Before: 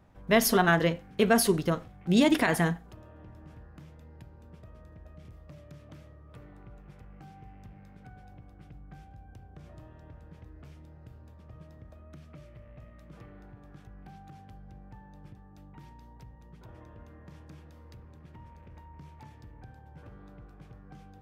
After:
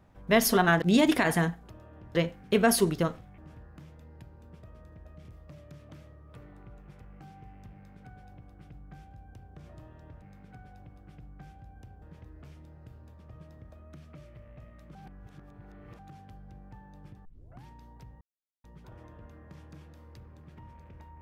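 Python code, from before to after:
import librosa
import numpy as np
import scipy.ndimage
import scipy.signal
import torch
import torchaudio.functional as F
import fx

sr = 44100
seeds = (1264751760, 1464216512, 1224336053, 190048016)

y = fx.edit(x, sr, fx.move(start_s=0.82, length_s=1.23, to_s=3.38),
    fx.duplicate(start_s=7.74, length_s=1.8, to_s=10.22),
    fx.reverse_span(start_s=13.15, length_s=1.04),
    fx.tape_start(start_s=15.45, length_s=0.4),
    fx.insert_silence(at_s=16.41, length_s=0.43), tone=tone)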